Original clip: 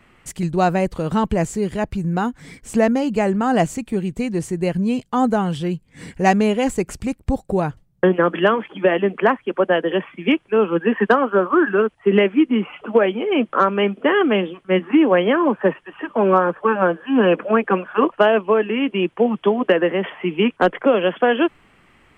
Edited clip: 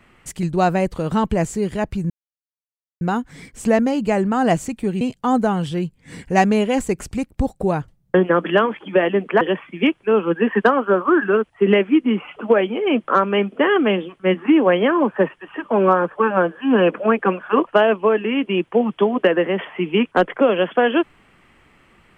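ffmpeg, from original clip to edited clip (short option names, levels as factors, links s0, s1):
-filter_complex "[0:a]asplit=4[s0][s1][s2][s3];[s0]atrim=end=2.1,asetpts=PTS-STARTPTS,afade=t=out:st=2.096:d=0.004:c=hsin,apad=pad_dur=0.91[s4];[s1]atrim=start=2.1:end=4.102,asetpts=PTS-STARTPTS,afade=t=in:d=0.004:c=hsin[s5];[s2]atrim=start=4.898:end=9.302[s6];[s3]atrim=start=9.858[s7];[s4][s5]concat=n=2:v=0:a=1[s8];[s8][s6]acrossfade=d=0.004:c1=hsin:c2=hsin[s9];[s9][s7]acrossfade=d=0.004:c1=hsin:c2=hsin"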